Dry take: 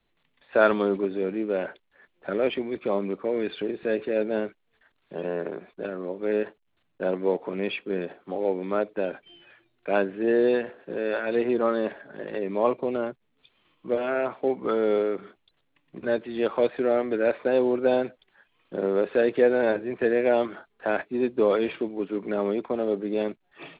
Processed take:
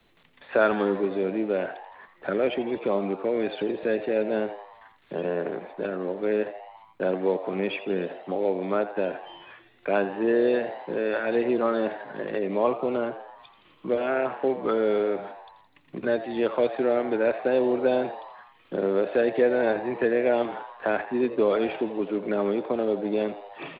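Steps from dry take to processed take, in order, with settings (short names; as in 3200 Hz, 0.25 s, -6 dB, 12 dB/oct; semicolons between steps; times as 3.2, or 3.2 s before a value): frequency-shifting echo 83 ms, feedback 57%, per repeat +94 Hz, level -14 dB; three-band squash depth 40%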